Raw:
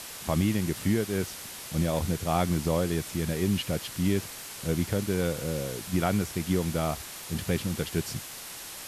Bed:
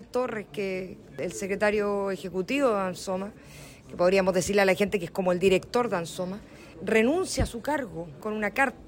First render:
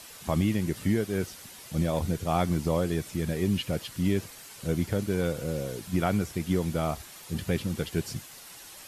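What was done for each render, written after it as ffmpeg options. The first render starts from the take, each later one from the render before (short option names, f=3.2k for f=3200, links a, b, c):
-af "afftdn=nr=8:nf=-42"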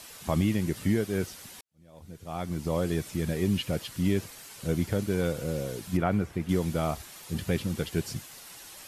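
-filter_complex "[0:a]asettb=1/sr,asplit=3[a][b][c];[a]atrim=end=5.974[d];[b]atrim=start=5.97:end=6.49,asetpts=PTS-STARTPTS,afade=t=in:d=0.004:c=qsin,afade=t=out:st=0.516:d=0.004:c=qsin,acrossover=split=2600[e][f];[f]acompressor=threshold=-57dB:ratio=4:attack=1:release=60[g];[e][g]amix=inputs=2:normalize=0[h];[c]atrim=start=6.486[i];[d][h]acrossfade=d=0.004:c1=hsin:c2=qsin[j];[j][i]acrossfade=d=0.004:c1=qsin:c2=hsin,asplit=2[k][l];[k]atrim=end=1.61,asetpts=PTS-STARTPTS,afade=t=out:st=1.606:d=0.004:c=hsin[m];[l]atrim=start=1.61,asetpts=PTS-STARTPTS,afade=t=in:d=1.28:c=qua[n];[m][n]concat=n=2:v=0:a=1"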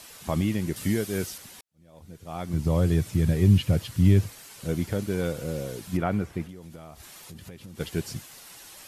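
-filter_complex "[0:a]asettb=1/sr,asplit=3[a][b][c];[a]atrim=end=0.764[d];[b]atrim=start=0.76:end=1.38,asetpts=PTS-STARTPTS,afade=t=in:d=0.004:c=qsin,afade=t=out:st=0.616:d=0.004:c=qsin,highshelf=f=3.7k:g=8[e];[c]atrim=start=1.376[f];[d][e]acrossfade=d=0.004:c1=hsin:c2=qsin[g];[g][f]acrossfade=d=0.004:c1=qsin:c2=hsin,asettb=1/sr,asplit=3[h][i][j];[h]atrim=end=2.534[k];[i]atrim=start=2.53:end=4.33,asetpts=PTS-STARTPTS,afade=t=in:d=0.004:c=qsin,afade=t=out:st=1.796:d=0.004:c=qsin,equalizer=f=100:w=0.98:g=14[l];[j]atrim=start=4.326[m];[k][l]acrossfade=d=0.004:c1=hsin:c2=qsin[n];[n][m]acrossfade=d=0.004:c1=qsin:c2=hsin,asplit=3[o][p][q];[o]afade=t=out:st=6.46:d=0.02[r];[p]acompressor=threshold=-40dB:ratio=6:attack=3.2:release=140:knee=1:detection=peak,afade=t=in:st=6.46:d=0.02,afade=t=out:st=7.79:d=0.02[s];[q]afade=t=in:st=7.79:d=0.02[t];[r][s][t]amix=inputs=3:normalize=0"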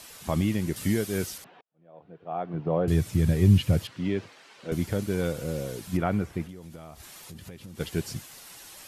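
-filter_complex "[0:a]asettb=1/sr,asplit=3[a][b][c];[a]atrim=end=1.444[d];[b]atrim=start=1.44:end=2.88,asetpts=PTS-STARTPTS,afade=t=in:d=0.004:c=qsin,afade=t=out:st=1.436:d=0.004:c=qsin,highpass=f=160:w=0.5412,highpass=f=160:w=1.3066,equalizer=f=220:t=q:w=4:g=-10,equalizer=f=460:t=q:w=4:g=4,equalizer=f=710:t=q:w=4:g=7,equalizer=f=2.1k:t=q:w=4:g=-8,lowpass=f=2.5k:w=0.5412,lowpass=f=2.5k:w=1.3066[e];[c]atrim=start=2.876[f];[d][e]acrossfade=d=0.004:c1=hsin:c2=qsin[g];[g][f]acrossfade=d=0.004:c1=qsin:c2=hsin,asettb=1/sr,asplit=3[h][i][j];[h]atrim=end=3.874[k];[i]atrim=start=3.87:end=4.72,asetpts=PTS-STARTPTS,afade=t=in:d=0.004:c=qsin,afade=t=out:st=0.846:d=0.004:c=qsin,highpass=300,lowpass=3.4k[l];[j]atrim=start=4.716[m];[k][l]acrossfade=d=0.004:c1=hsin:c2=qsin[n];[n][m]acrossfade=d=0.004:c1=qsin:c2=hsin"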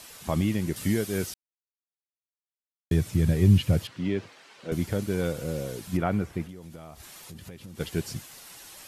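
-filter_complex "[0:a]asplit=3[a][b][c];[a]atrim=end=1.34,asetpts=PTS-STARTPTS,afade=t=out:st=1.336:d=0.004:c=hsin[d];[b]atrim=start=1.34:end=2.91,asetpts=PTS-STARTPTS,volume=0[e];[c]atrim=start=2.91,asetpts=PTS-STARTPTS,afade=t=in:d=0.004:c=hsin[f];[d][e][f]concat=n=3:v=0:a=1"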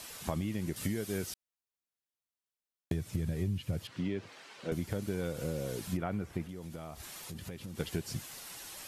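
-af "acompressor=threshold=-31dB:ratio=6"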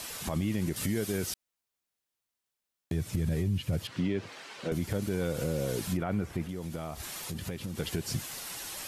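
-af "acontrast=61,alimiter=limit=-21dB:level=0:latency=1:release=34"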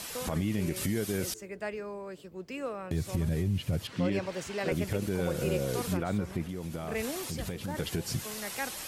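-filter_complex "[1:a]volume=-12.5dB[a];[0:a][a]amix=inputs=2:normalize=0"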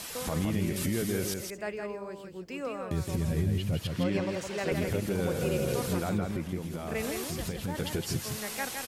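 -af "aecho=1:1:164:0.562"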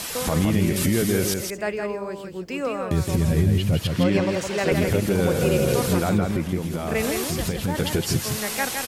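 -af "volume=9dB"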